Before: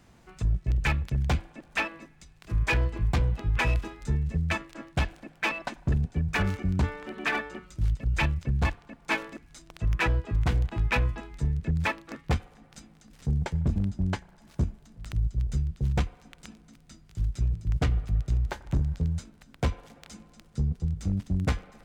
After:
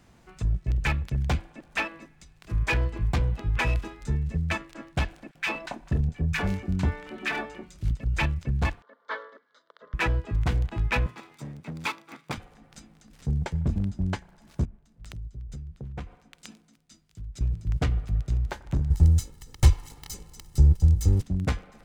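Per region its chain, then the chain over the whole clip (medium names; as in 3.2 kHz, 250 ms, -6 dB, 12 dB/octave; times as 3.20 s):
5.31–7.91 s: doubling 26 ms -12 dB + bands offset in time highs, lows 40 ms, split 1.2 kHz
8.82–9.94 s: Chebyshev band-pass 390–3700 Hz, order 3 + static phaser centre 510 Hz, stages 8
11.06–12.38 s: comb filter that takes the minimum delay 0.83 ms + high-pass 120 Hz 24 dB/octave + bass shelf 220 Hz -9 dB
14.65–17.41 s: compression 5:1, threshold -36 dBFS + three bands expanded up and down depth 100%
18.90–21.22 s: comb filter that takes the minimum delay 1 ms + tone controls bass +8 dB, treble +13 dB + comb 2.3 ms, depth 64%
whole clip: none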